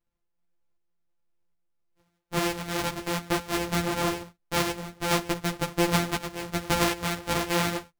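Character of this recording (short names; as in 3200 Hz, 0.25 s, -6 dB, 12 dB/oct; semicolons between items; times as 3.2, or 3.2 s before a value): a buzz of ramps at a fixed pitch in blocks of 256 samples; tremolo saw up 1.3 Hz, depth 45%; a shimmering, thickened sound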